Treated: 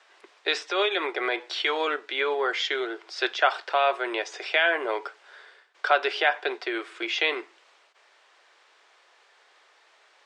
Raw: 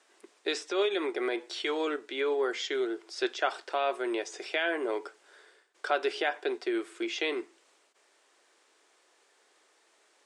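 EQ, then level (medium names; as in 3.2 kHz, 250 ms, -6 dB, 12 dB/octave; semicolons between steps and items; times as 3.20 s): three-band isolator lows -17 dB, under 530 Hz, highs -19 dB, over 5.1 kHz; +9.0 dB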